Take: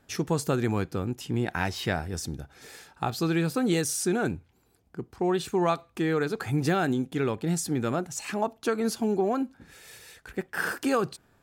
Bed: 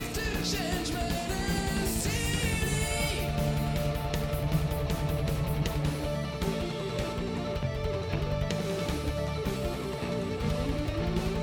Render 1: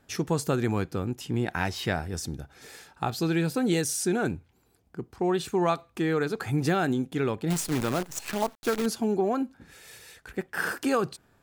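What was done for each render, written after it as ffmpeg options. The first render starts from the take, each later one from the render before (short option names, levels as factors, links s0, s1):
-filter_complex "[0:a]asettb=1/sr,asplit=3[s0][s1][s2];[s0]atrim=end=3.184[s3];[s1]atrim=start=3.18:end=4.17,asetpts=PTS-STARTPTS,afade=t=in:d=0.004:c=qsin,afade=t=out:st=0.986:d=0.004:c=qsin,bandreject=f=1200:w=6.6[s4];[s2]atrim=start=4.166[s5];[s3][s4]acrossfade=d=0.004:c1=hsin:c2=qsin[s6];[s6][s5]acrossfade=d=0.004:c1=qsin:c2=hsin,asettb=1/sr,asplit=3[s7][s8][s9];[s7]atrim=end=7.504[s10];[s8]atrim=start=7.5:end=8.86,asetpts=PTS-STARTPTS,afade=t=in:d=0.004:c=qsin,afade=t=out:st=1.356:d=0.004:c=qsin,acrusher=bits=6:dc=4:mix=0:aa=0.000001[s11];[s9]atrim=start=8.856[s12];[s10][s11]acrossfade=d=0.004:c1=hsin:c2=qsin[s13];[s13][s12]acrossfade=d=0.004:c1=qsin:c2=hsin"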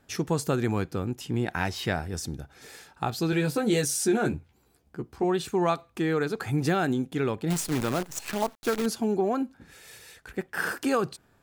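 -filter_complex "[0:a]asettb=1/sr,asplit=3[s0][s1][s2];[s0]atrim=end=3.314[s3];[s1]atrim=start=3.31:end=5.24,asetpts=PTS-STARTPTS,afade=t=in:d=0.004:c=qsin,afade=t=out:st=1.926:d=0.004:c=qsin,asplit=2[s4][s5];[s5]adelay=14,volume=0.631[s6];[s4][s6]amix=inputs=2:normalize=0,atrim=end_sample=85113[s7];[s2]atrim=start=5.236[s8];[s3][s7]acrossfade=d=0.004:c1=hsin:c2=qsin[s9];[s9][s8]acrossfade=d=0.004:c1=qsin:c2=hsin"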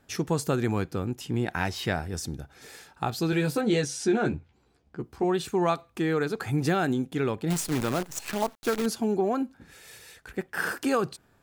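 -filter_complex "[0:a]asettb=1/sr,asplit=3[s0][s1][s2];[s0]atrim=end=3.614[s3];[s1]atrim=start=3.61:end=5,asetpts=PTS-STARTPTS,afade=t=in:d=0.004:c=qsin,afade=t=out:st=1.386:d=0.004:c=qsin,lowpass=5400[s4];[s2]atrim=start=4.996[s5];[s3][s4]acrossfade=d=0.004:c1=hsin:c2=qsin[s6];[s6][s5]acrossfade=d=0.004:c1=qsin:c2=hsin"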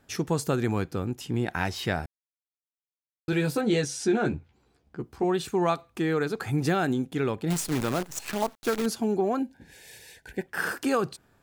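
-filter_complex "[0:a]asettb=1/sr,asplit=3[s0][s1][s2];[s0]atrim=end=9.394[s3];[s1]atrim=start=9.39:end=10.47,asetpts=PTS-STARTPTS,afade=t=in:d=0.004:c=qsin,afade=t=out:st=1.076:d=0.004:c=qsin,asuperstop=centerf=1200:order=12:qfactor=2.6[s4];[s2]atrim=start=10.466[s5];[s3][s4]acrossfade=d=0.004:c1=hsin:c2=qsin[s6];[s6][s5]acrossfade=d=0.004:c1=qsin:c2=hsin,asplit=3[s7][s8][s9];[s7]atrim=end=2.06,asetpts=PTS-STARTPTS,afade=t=out:st=2.056:d=0.004:c=hsin[s10];[s8]atrim=start=2.06:end=3.28,asetpts=PTS-STARTPTS,volume=0[s11];[s9]atrim=start=3.28,asetpts=PTS-STARTPTS,afade=t=in:d=0.004:c=hsin[s12];[s10][s11][s12]concat=n=3:v=0:a=1"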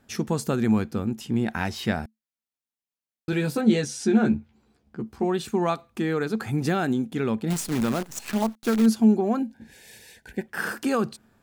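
-af "equalizer=f=220:w=7.9:g=14"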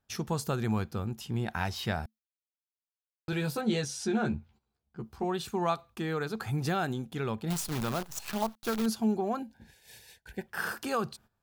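-af "agate=range=0.2:threshold=0.00355:ratio=16:detection=peak,equalizer=f=250:t=o:w=1:g=-12,equalizer=f=500:t=o:w=1:g=-4,equalizer=f=2000:t=o:w=1:g=-6,equalizer=f=8000:t=o:w=1:g=-5"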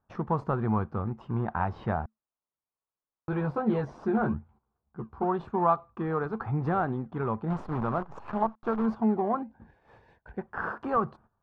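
-filter_complex "[0:a]asplit=2[s0][s1];[s1]acrusher=samples=27:mix=1:aa=0.000001:lfo=1:lforange=16.2:lforate=2.4,volume=0.266[s2];[s0][s2]amix=inputs=2:normalize=0,lowpass=f=1100:t=q:w=2.4"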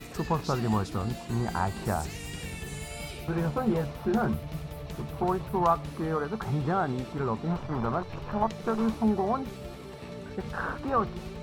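-filter_complex "[1:a]volume=0.355[s0];[0:a][s0]amix=inputs=2:normalize=0"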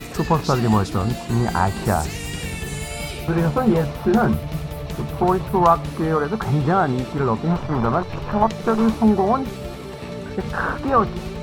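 -af "volume=2.99,alimiter=limit=0.708:level=0:latency=1"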